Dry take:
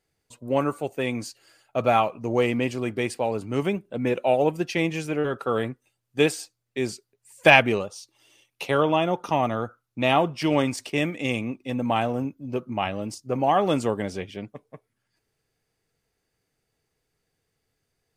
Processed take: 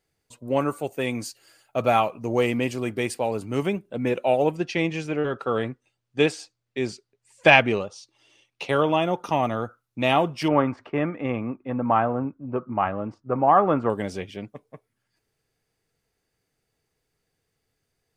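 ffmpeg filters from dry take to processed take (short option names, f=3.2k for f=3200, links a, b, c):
-filter_complex "[0:a]asettb=1/sr,asplit=3[a][b][c];[a]atrim=end=0.684[d];[b]atrim=start=0.68:end=3.62,asetpts=PTS-STARTPTS,afade=t=in:d=0.004:c=qsin,afade=t=out:st=2.936:d=0.004:c=qsin,highshelf=f=9k:g=7[e];[c]atrim=start=3.616[f];[d][e]acrossfade=d=0.004:c1=hsin:c2=qsin[g];[g][f]acrossfade=d=0.004:c1=qsin:c2=hsin,asettb=1/sr,asplit=3[h][i][j];[h]atrim=end=4.554[k];[i]atrim=start=4.55:end=8.69,asetpts=PTS-STARTPTS,afade=t=in:d=0.004:c=qsin,afade=t=out:st=4.136:d=0.004:c=qsin,lowpass=6.1k[l];[j]atrim=start=8.686[m];[k][l]acrossfade=d=0.004:c1=hsin:c2=qsin[n];[n][m]acrossfade=d=0.004:c1=qsin:c2=hsin,asettb=1/sr,asplit=3[o][p][q];[o]atrim=end=10.484[r];[p]atrim=start=10.48:end=13.9,asetpts=PTS-STARTPTS,afade=t=in:d=0.004:c=qsin,afade=t=out:st=3.416:d=0.004:c=qsin,lowpass=f=1.3k:t=q:w=2.5[s];[q]atrim=start=13.896[t];[r][s]acrossfade=d=0.004:c1=hsin:c2=qsin[u];[u][t]acrossfade=d=0.004:c1=qsin:c2=hsin"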